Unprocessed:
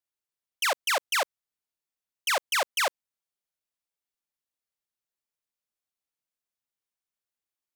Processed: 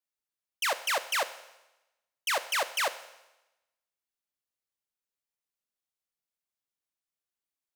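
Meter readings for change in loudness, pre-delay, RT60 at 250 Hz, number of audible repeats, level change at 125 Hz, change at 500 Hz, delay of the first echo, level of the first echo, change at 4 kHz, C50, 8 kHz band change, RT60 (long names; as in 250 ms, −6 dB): −2.5 dB, 13 ms, 0.95 s, no echo audible, can't be measured, −2.5 dB, no echo audible, no echo audible, −3.0 dB, 14.5 dB, −2.5 dB, 1.0 s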